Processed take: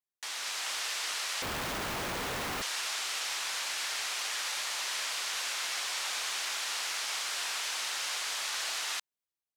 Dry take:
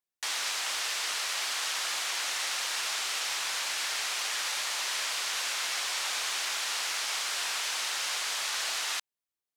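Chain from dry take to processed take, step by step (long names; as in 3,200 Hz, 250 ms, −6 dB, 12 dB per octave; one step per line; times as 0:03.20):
0:01.42–0:02.62: comparator with hysteresis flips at −30.5 dBFS
automatic gain control gain up to 4 dB
level −6.5 dB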